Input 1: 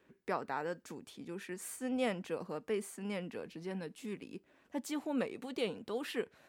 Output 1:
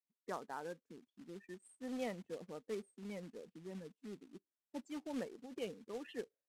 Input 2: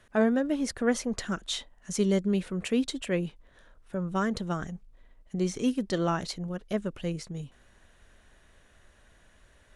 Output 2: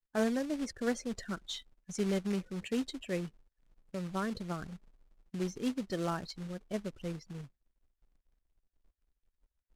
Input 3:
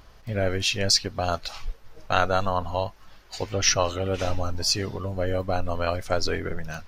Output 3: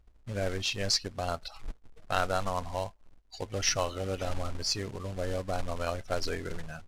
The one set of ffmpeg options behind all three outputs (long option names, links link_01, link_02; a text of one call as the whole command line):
ffmpeg -i in.wav -af "afftdn=noise_reduction=35:noise_floor=-39,acrusher=bits=3:mode=log:mix=0:aa=0.000001,lowpass=10000,volume=-7dB" out.wav